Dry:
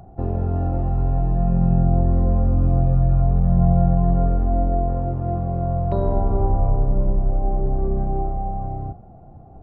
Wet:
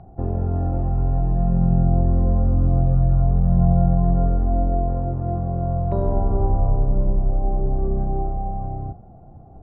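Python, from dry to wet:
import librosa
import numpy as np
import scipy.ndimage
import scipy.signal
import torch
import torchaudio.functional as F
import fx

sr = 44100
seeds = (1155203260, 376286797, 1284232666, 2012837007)

y = fx.air_absorb(x, sr, metres=430.0)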